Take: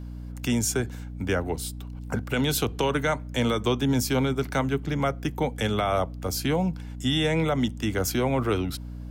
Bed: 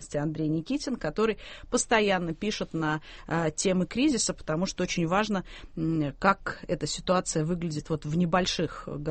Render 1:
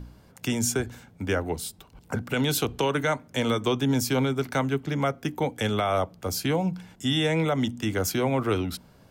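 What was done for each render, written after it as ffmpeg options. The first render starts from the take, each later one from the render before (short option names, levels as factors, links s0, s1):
-af "bandreject=f=60:t=h:w=4,bandreject=f=120:t=h:w=4,bandreject=f=180:t=h:w=4,bandreject=f=240:t=h:w=4,bandreject=f=300:t=h:w=4"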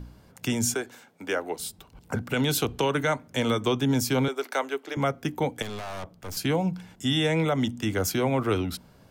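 -filter_complex "[0:a]asettb=1/sr,asplit=3[s0][s1][s2];[s0]atrim=end=0.744[s3];[s1]atrim=start=0.74:end=1.6,asetpts=PTS-STARTPTS,afade=t=in:d=0.004:c=qsin,afade=t=out:st=0.856:d=0.004:c=qsin,highpass=360[s4];[s2]atrim=start=1.596[s5];[s3][s4]acrossfade=d=0.004:c1=hsin:c2=qsin[s6];[s6][s5]acrossfade=d=0.004:c1=qsin:c2=hsin,asettb=1/sr,asplit=3[s7][s8][s9];[s7]atrim=end=4.284[s10];[s8]atrim=start=4.28:end=4.97,asetpts=PTS-STARTPTS,afade=t=in:d=0.004:c=qsin,afade=t=out:st=0.686:d=0.004:c=qsin,highpass=f=370:w=0.5412,highpass=f=370:w=1.3066[s11];[s9]atrim=start=4.966[s12];[s10][s11]acrossfade=d=0.004:c1=hsin:c2=qsin[s13];[s13][s12]acrossfade=d=0.004:c1=qsin:c2=hsin,asettb=1/sr,asplit=3[s14][s15][s16];[s14]atrim=end=5.624[s17];[s15]atrim=start=5.62:end=6.37,asetpts=PTS-STARTPTS,afade=t=in:d=0.004:c=qsin,afade=t=out:st=0.746:d=0.004:c=qsin,aeval=exprs='(tanh(50.1*val(0)+0.65)-tanh(0.65))/50.1':c=same[s18];[s16]atrim=start=6.366[s19];[s17][s18]acrossfade=d=0.004:c1=hsin:c2=qsin[s20];[s20][s19]acrossfade=d=0.004:c1=qsin:c2=hsin"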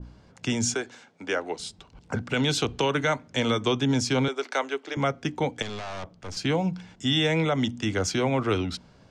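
-af "lowpass=f=7000:w=0.5412,lowpass=f=7000:w=1.3066,adynamicequalizer=threshold=0.0141:dfrequency=1700:dqfactor=0.7:tfrequency=1700:tqfactor=0.7:attack=5:release=100:ratio=0.375:range=1.5:mode=boostabove:tftype=highshelf"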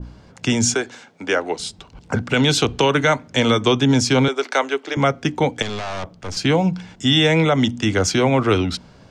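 -af "volume=2.51"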